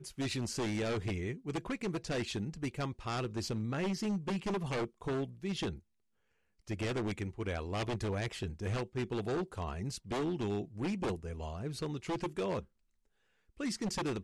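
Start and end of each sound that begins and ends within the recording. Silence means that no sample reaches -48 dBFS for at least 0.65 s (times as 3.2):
6.67–12.65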